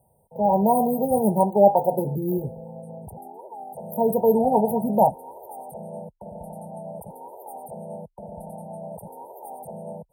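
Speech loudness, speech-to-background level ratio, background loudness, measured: -21.0 LUFS, 18.0 dB, -39.0 LUFS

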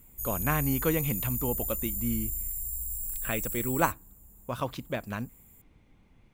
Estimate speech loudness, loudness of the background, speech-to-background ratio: -32.5 LUFS, -32.0 LUFS, -0.5 dB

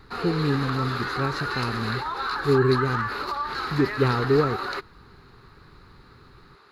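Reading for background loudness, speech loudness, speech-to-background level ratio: -29.0 LUFS, -26.0 LUFS, 3.0 dB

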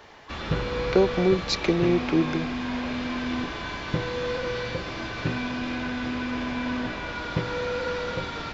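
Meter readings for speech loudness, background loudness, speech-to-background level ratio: -24.5 LUFS, -30.0 LUFS, 5.5 dB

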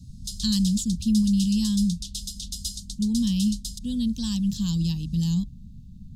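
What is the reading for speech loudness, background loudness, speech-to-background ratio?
-25.0 LUFS, -35.0 LUFS, 10.0 dB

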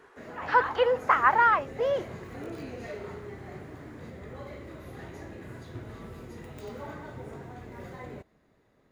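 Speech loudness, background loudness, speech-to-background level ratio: -24.5 LUFS, -42.5 LUFS, 18.0 dB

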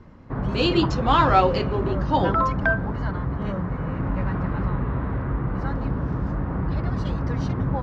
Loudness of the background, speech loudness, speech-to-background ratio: -26.5 LUFS, -22.5 LUFS, 4.0 dB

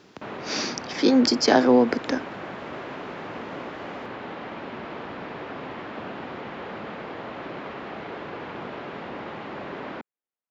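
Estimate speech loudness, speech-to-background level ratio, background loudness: -21.5 LUFS, 14.5 dB, -36.0 LUFS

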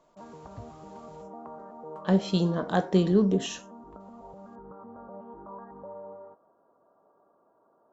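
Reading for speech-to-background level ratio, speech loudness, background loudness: 19.5 dB, -26.0 LUFS, -45.5 LUFS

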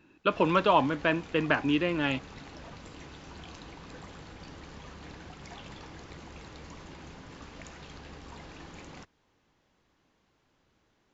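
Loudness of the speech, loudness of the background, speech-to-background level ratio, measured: -27.0 LUFS, -47.0 LUFS, 20.0 dB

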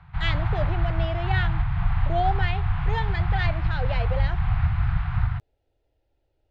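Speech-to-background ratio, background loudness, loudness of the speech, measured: -5.0 dB, -26.5 LUFS, -31.5 LUFS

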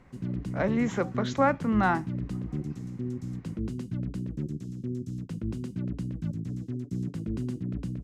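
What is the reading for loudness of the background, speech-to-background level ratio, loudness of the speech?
-35.0 LUFS, 7.5 dB, -27.5 LUFS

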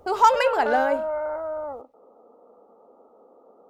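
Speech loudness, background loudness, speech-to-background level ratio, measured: -21.5 LUFS, -29.5 LUFS, 8.0 dB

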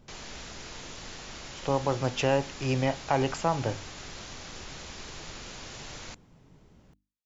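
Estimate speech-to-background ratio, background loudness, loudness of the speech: 13.0 dB, -42.0 LUFS, -29.0 LUFS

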